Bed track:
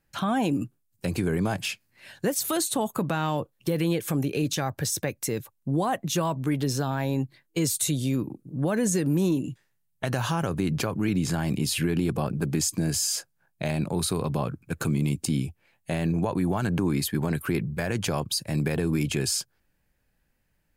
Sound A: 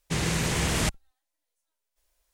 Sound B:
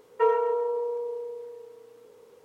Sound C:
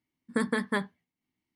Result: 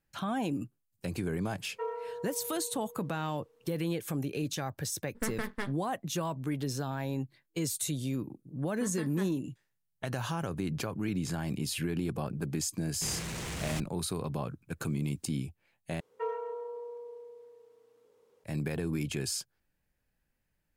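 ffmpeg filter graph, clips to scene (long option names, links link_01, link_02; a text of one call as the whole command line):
ffmpeg -i bed.wav -i cue0.wav -i cue1.wav -i cue2.wav -filter_complex "[2:a]asplit=2[link_01][link_02];[3:a]asplit=2[link_03][link_04];[0:a]volume=-7.5dB[link_05];[link_03]aeval=exprs='max(val(0),0)':channel_layout=same[link_06];[link_04]acrusher=bits=9:mix=0:aa=0.000001[link_07];[1:a]asoftclip=type=tanh:threshold=-28dB[link_08];[link_05]asplit=2[link_09][link_10];[link_09]atrim=end=16.004[link_11];[link_02]atrim=end=2.44,asetpts=PTS-STARTPTS,volume=-12.5dB[link_12];[link_10]atrim=start=18.436[link_13];[link_01]atrim=end=2.44,asetpts=PTS-STARTPTS,volume=-14dB,afade=type=in:duration=0.004:curve=hsin,afade=type=out:start_time=2.436:duration=0.004:curve=hsin,adelay=1590[link_14];[link_06]atrim=end=1.55,asetpts=PTS-STARTPTS,volume=-4dB,afade=type=in:duration=0.004:curve=hsin,afade=type=out:start_time=1.546:duration=0.004:curve=hsin,adelay=4860[link_15];[link_07]atrim=end=1.55,asetpts=PTS-STARTPTS,volume=-14dB,afade=type=in:duration=0.004:curve=hsin,afade=type=out:start_time=1.546:duration=0.004:curve=hsin,adelay=8450[link_16];[link_08]atrim=end=2.33,asetpts=PTS-STARTPTS,volume=-6.5dB,afade=type=in:duration=0.004:curve=hsin,afade=type=out:start_time=2.326:duration=0.004:curve=hsin,adelay=12910[link_17];[link_11][link_12]acrossfade=duration=0.004:curve1=hsin:curve2=hsin[link_18];[link_18][link_13]acrossfade=duration=0.004:curve1=hsin:curve2=hsin[link_19];[link_19][link_14][link_15][link_16][link_17]amix=inputs=5:normalize=0" out.wav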